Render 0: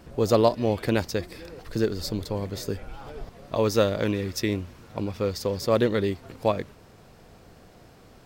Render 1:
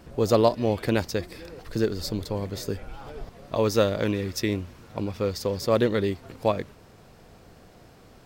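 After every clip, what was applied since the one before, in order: nothing audible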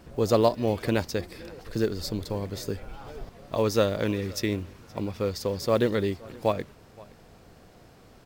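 block floating point 7-bit; echo 0.521 s -23.5 dB; gain -1.5 dB

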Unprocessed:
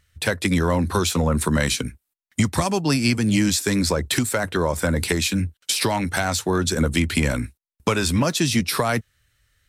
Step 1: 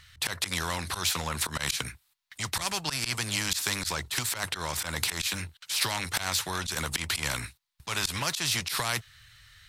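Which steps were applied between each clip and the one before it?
graphic EQ 125/250/500/1000/2000/4000 Hz +7/-12/-7/+7/+4/+10 dB; auto swell 0.102 s; spectral compressor 2:1; gain -8.5 dB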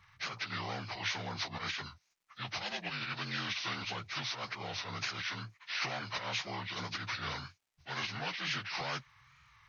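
inharmonic rescaling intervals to 79%; crackle 280/s -63 dBFS; wow and flutter 87 cents; gain -6.5 dB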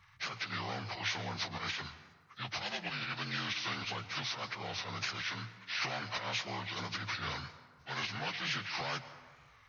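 plate-style reverb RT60 1.6 s, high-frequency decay 0.5×, pre-delay 0.105 s, DRR 13.5 dB

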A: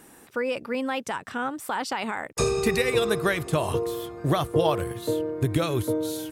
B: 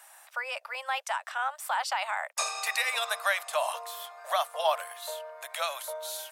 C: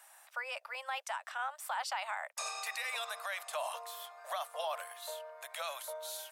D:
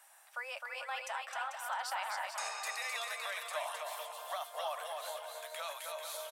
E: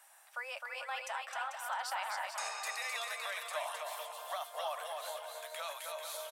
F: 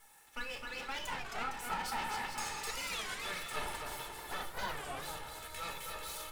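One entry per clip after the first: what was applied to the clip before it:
steep high-pass 600 Hz 72 dB/oct
limiter -22.5 dBFS, peak gain reduction 9.5 dB; gain -5.5 dB
flange 1.5 Hz, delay 5 ms, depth 2 ms, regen -67%; on a send: bouncing-ball echo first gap 0.26 s, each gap 0.7×, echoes 5; on the sum: gain +2 dB
nothing audible
minimum comb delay 2.3 ms; shoebox room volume 510 m³, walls furnished, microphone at 1.5 m; record warp 33 1/3 rpm, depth 250 cents

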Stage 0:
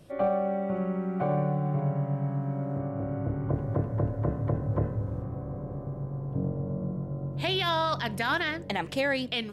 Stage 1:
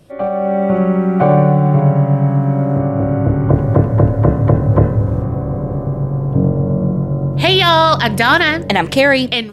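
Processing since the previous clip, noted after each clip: AGC gain up to 11 dB; gain +5.5 dB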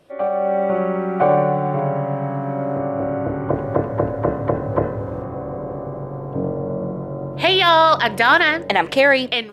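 tone controls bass -14 dB, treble -8 dB; gain -1.5 dB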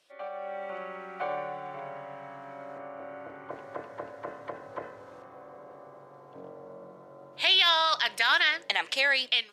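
band-pass 5500 Hz, Q 0.87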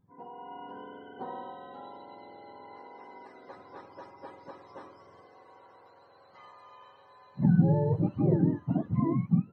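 spectrum mirrored in octaves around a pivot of 750 Hz; gain -4 dB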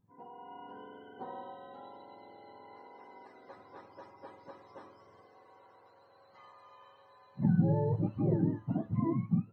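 resonator 110 Hz, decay 0.28 s, harmonics all, mix 50%

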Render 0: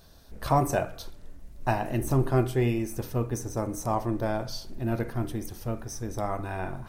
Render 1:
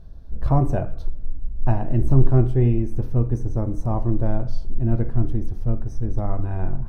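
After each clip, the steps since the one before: tilt -4.5 dB/oct; gain -4 dB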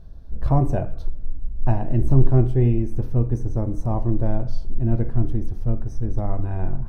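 dynamic EQ 1300 Hz, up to -4 dB, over -46 dBFS, Q 3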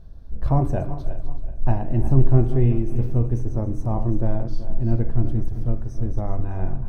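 regenerating reverse delay 0.189 s, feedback 57%, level -11 dB; gain -1 dB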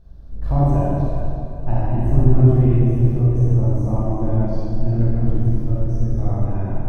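reverb RT60 2.5 s, pre-delay 25 ms, DRR -7.5 dB; gain -5.5 dB

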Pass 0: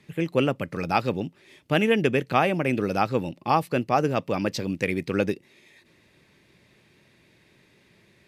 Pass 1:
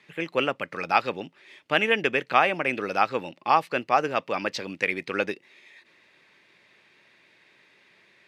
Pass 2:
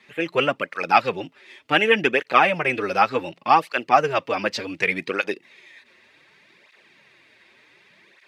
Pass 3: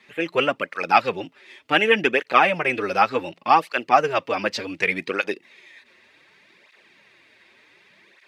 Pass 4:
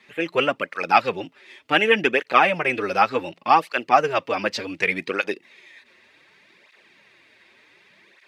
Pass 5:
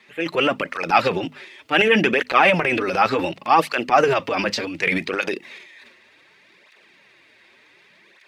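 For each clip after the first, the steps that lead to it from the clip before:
band-pass 1800 Hz, Q 0.6; gain +4.5 dB
tape flanging out of phase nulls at 0.67 Hz, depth 7.1 ms; gain +7 dB
bell 140 Hz -5 dB 0.3 oct
nothing audible
transient shaper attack -2 dB, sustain +10 dB; notches 50/100/150/200/250 Hz; gain +1 dB

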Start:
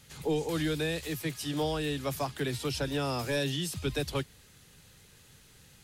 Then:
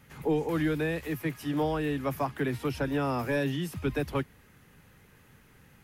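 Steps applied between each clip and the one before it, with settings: graphic EQ 250/1000/2000/4000/8000 Hz +5/+4/+4/-10/-10 dB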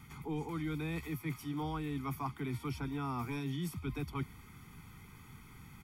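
comb 0.9 ms, depth 95%; reverse; compressor 5:1, threshold -36 dBFS, peak gain reduction 13.5 dB; reverse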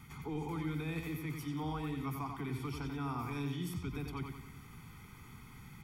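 limiter -32 dBFS, peak gain reduction 6 dB; analogue delay 91 ms, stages 4096, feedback 46%, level -5.5 dB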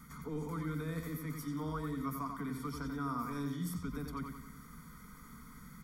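fixed phaser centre 540 Hz, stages 8; gain +4 dB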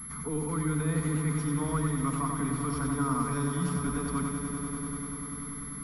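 swelling echo 98 ms, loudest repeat 5, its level -13 dB; pulse-width modulation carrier 11000 Hz; gain +7 dB

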